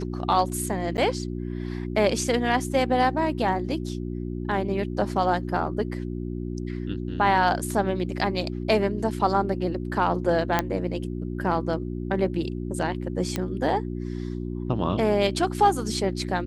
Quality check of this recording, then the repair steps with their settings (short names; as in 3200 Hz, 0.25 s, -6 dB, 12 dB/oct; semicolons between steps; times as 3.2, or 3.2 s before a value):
hum 60 Hz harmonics 6 -31 dBFS
0.97–0.98 gap 9.2 ms
10.59 pop -7 dBFS
13.36 pop -12 dBFS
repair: de-click; de-hum 60 Hz, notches 6; interpolate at 0.97, 9.2 ms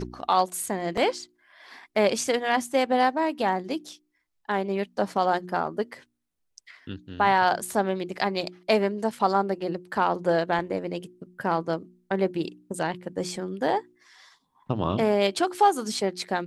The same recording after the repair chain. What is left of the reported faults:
none